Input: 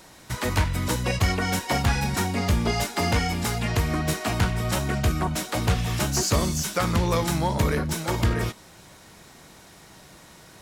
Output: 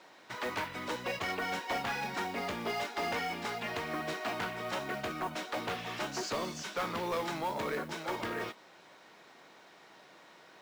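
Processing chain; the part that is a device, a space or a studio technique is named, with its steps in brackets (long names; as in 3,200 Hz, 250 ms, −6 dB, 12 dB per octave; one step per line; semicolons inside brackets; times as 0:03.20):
carbon microphone (band-pass filter 360–3,600 Hz; soft clipping −23 dBFS, distortion −14 dB; noise that follows the level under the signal 22 dB)
level −4.5 dB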